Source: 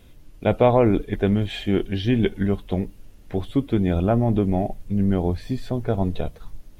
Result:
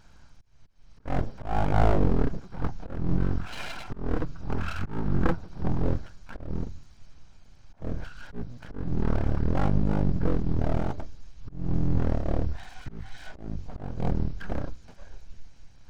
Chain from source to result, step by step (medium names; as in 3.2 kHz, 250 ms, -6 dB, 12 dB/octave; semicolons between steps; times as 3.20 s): comb filter that takes the minimum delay 0.55 ms; slow attack 114 ms; speed mistake 78 rpm record played at 33 rpm; full-wave rectifier